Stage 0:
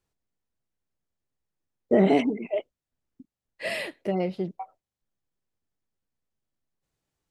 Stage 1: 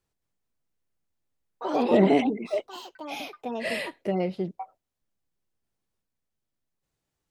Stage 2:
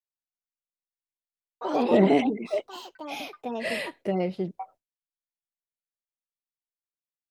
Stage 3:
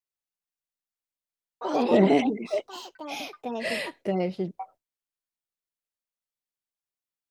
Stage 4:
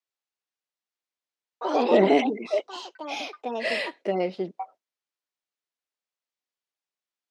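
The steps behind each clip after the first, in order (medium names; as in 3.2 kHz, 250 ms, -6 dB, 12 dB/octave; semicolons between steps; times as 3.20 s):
ever faster or slower copies 218 ms, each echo +4 st, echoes 3, each echo -6 dB
expander -48 dBFS
dynamic bell 5.8 kHz, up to +5 dB, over -56 dBFS, Q 1.5
band-pass 300–6000 Hz; trim +3 dB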